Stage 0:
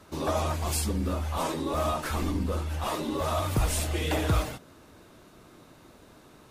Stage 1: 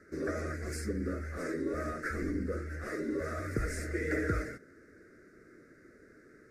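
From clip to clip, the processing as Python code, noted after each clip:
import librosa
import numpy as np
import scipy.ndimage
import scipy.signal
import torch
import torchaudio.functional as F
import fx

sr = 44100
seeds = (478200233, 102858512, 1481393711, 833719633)

y = fx.curve_eq(x, sr, hz=(150.0, 440.0, 620.0, 930.0, 1400.0, 2000.0, 3100.0, 5000.0, 8900.0, 15000.0), db=(0, 10, -2, -26, 10, 12, -27, -1, -5, -13))
y = y * 10.0 ** (-9.0 / 20.0)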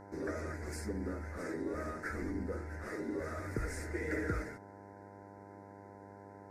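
y = fx.dmg_buzz(x, sr, base_hz=100.0, harmonics=10, level_db=-49.0, tilt_db=-1, odd_only=False)
y = y * 10.0 ** (-4.0 / 20.0)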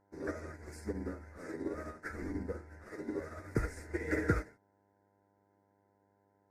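y = fx.upward_expand(x, sr, threshold_db=-50.0, expansion=2.5)
y = y * 10.0 ** (8.0 / 20.0)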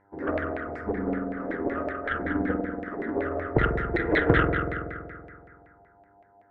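y = fx.rev_spring(x, sr, rt60_s=2.2, pass_ms=(47,), chirp_ms=50, drr_db=-1.0)
y = fx.filter_lfo_lowpass(y, sr, shape='saw_down', hz=5.3, low_hz=630.0, high_hz=2200.0, q=3.4)
y = fx.cheby_harmonics(y, sr, harmonics=(2,), levels_db=(-7,), full_scale_db=-14.5)
y = y * 10.0 ** (6.5 / 20.0)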